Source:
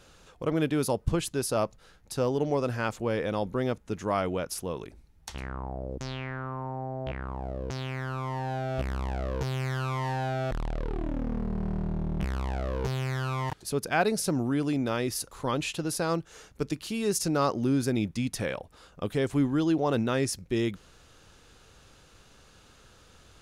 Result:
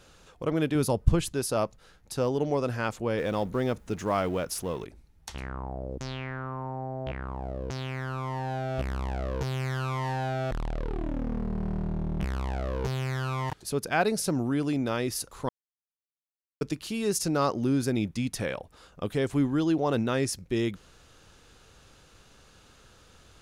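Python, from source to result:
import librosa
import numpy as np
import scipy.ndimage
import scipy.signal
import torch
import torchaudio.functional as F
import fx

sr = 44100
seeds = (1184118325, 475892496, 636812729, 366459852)

y = fx.low_shelf(x, sr, hz=130.0, db=10.0, at=(0.75, 1.33))
y = fx.law_mismatch(y, sr, coded='mu', at=(3.18, 4.85))
y = fx.edit(y, sr, fx.silence(start_s=15.49, length_s=1.12), tone=tone)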